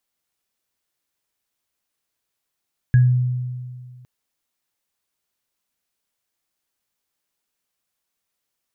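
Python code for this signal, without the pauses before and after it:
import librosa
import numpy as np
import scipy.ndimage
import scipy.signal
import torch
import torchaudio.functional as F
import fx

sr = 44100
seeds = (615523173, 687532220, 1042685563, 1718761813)

y = fx.additive_free(sr, length_s=1.11, hz=125.0, level_db=-8.5, upper_db=(-17,), decay_s=1.97, upper_decays_s=(0.25,), upper_hz=(1660.0,))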